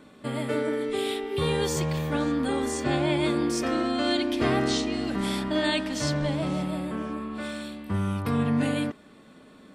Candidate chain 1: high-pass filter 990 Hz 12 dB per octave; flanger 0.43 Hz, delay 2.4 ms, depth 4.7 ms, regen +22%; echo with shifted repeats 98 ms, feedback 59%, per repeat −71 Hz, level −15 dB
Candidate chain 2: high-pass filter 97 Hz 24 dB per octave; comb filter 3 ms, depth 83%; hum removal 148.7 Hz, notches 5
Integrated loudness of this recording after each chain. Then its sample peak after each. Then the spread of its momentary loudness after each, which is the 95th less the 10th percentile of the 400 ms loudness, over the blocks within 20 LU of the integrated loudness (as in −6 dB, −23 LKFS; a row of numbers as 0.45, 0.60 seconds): −37.5, −25.0 LKFS; −19.0, −10.0 dBFS; 12, 10 LU